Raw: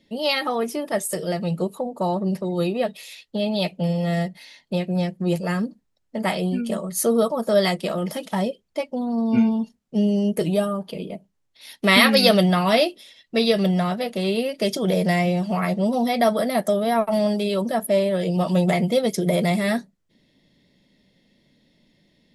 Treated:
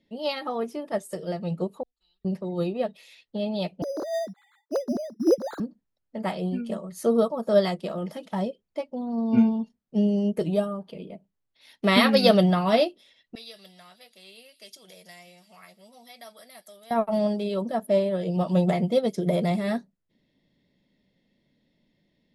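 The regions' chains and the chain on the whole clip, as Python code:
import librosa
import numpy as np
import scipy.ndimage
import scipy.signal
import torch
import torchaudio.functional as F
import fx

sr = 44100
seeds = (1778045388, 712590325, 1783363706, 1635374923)

y = fx.chain(x, sr, fx.cheby2_bandstop(low_hz=120.0, high_hz=1100.0, order=4, stop_db=50),
    fx.spacing_loss(db_at_10k=30), at=(1.83, 2.25))
y = fx.chain(y, sr, fx.sine_speech(),
    fx.lowpass(hz=1600.0, slope=24),
    fx.resample_bad(factor=8, down='filtered', up='hold'), at=(3.82, 5.6))
y = fx.chain(y, sr, fx.pre_emphasis(coefficient=0.97),
    fx.echo_wet_highpass(ms=162, feedback_pct=62, hz=5000.0, wet_db=-10), at=(13.35, 16.91))
y = fx.lowpass(y, sr, hz=3200.0, slope=6)
y = fx.dynamic_eq(y, sr, hz=2100.0, q=1.6, threshold_db=-42.0, ratio=4.0, max_db=-5)
y = fx.upward_expand(y, sr, threshold_db=-29.0, expansion=1.5)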